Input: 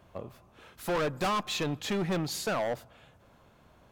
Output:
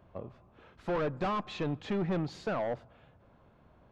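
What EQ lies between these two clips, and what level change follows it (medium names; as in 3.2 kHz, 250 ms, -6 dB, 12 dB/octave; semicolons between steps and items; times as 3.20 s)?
tape spacing loss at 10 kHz 36 dB; treble shelf 5 kHz +7.5 dB; 0.0 dB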